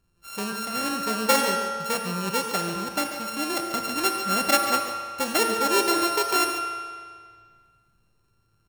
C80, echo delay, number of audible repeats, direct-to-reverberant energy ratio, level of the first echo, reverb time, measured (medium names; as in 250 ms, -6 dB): 4.5 dB, 141 ms, 1, 2.5 dB, -11.0 dB, 1.9 s